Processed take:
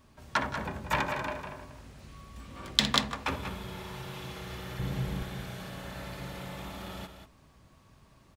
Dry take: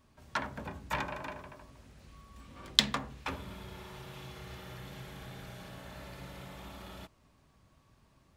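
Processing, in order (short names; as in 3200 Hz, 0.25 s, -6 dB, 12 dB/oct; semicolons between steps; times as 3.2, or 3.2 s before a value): 4.79–5.23 low shelf 390 Hz +10 dB; tapped delay 61/169/189 ms -18/-18/-9 dB; maximiser +6.5 dB; gain -1 dB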